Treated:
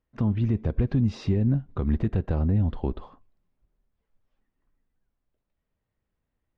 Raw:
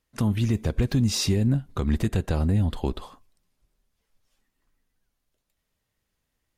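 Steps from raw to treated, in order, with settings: tape spacing loss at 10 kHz 39 dB

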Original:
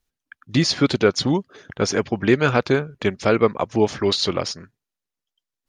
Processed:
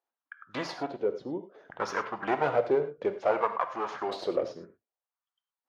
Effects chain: 0.6–1.71 dip -12 dB, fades 0.32 s; 2.52–4.43 low shelf 400 Hz -6 dB; one-sided clip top -22 dBFS; wah 0.61 Hz 430–1200 Hz, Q 2.4; non-linear reverb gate 0.13 s flat, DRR 8.5 dB; gain +3.5 dB; Vorbis 64 kbps 44100 Hz

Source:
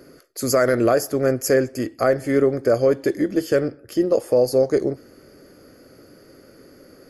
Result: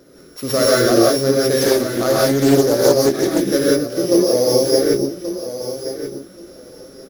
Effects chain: sample sorter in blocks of 8 samples; on a send: feedback echo 1.129 s, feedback 16%, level -11 dB; on the sum: non-linear reverb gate 0.2 s rising, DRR -5.5 dB; 1.61–3.42 Doppler distortion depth 0.32 ms; gain -2 dB

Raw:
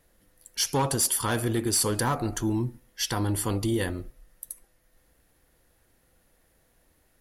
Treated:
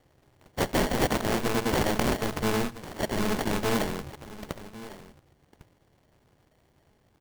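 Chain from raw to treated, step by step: sample-and-hold 35×; echo 1.102 s -16 dB; polarity switched at an audio rate 110 Hz

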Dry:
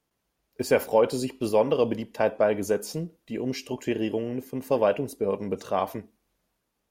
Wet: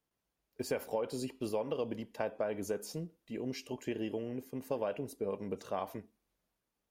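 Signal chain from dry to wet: compressor, threshold -22 dBFS, peak gain reduction 7.5 dB; gain -8.5 dB

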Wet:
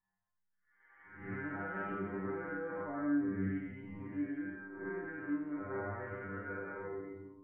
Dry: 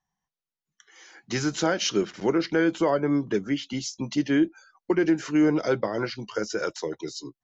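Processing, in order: time blur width 0.271 s; steep low-pass 1900 Hz 48 dB/oct; bell 400 Hz -11 dB 2.7 oct; 3.52–5.7 compressor 10:1, threshold -40 dBFS, peak gain reduction 10.5 dB; limiter -34.5 dBFS, peak gain reduction 9 dB; metallic resonator 96 Hz, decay 0.6 s, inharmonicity 0.002; gain +16.5 dB

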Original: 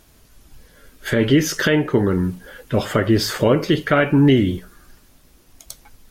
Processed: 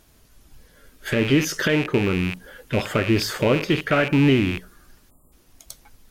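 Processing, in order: rattling part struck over -30 dBFS, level -13 dBFS; spectral delete 5.1–5.32, 1300–7000 Hz; gain -3.5 dB

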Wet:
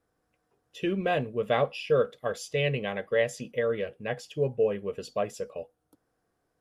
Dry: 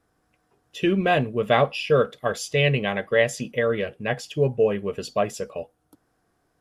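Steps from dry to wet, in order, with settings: bell 500 Hz +5.5 dB 0.39 oct; gain -8 dB

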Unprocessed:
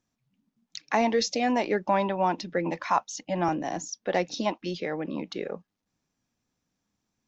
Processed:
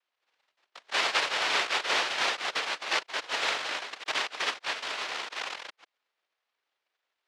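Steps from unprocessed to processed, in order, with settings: reverse delay 0.139 s, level -5 dB; noise vocoder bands 1; three-band isolator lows -23 dB, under 400 Hz, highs -24 dB, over 4100 Hz

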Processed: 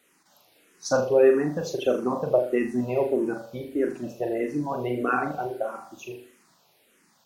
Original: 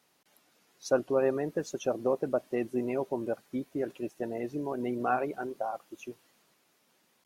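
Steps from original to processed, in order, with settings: on a send: flutter echo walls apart 6.9 m, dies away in 0.46 s; on the sum: endless phaser -1.6 Hz; gain +8 dB

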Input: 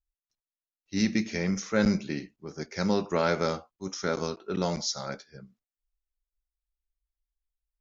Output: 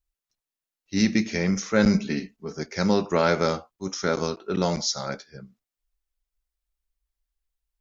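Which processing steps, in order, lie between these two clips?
1.93–2.58 comb 4.5 ms, depth 62%; gain +4.5 dB

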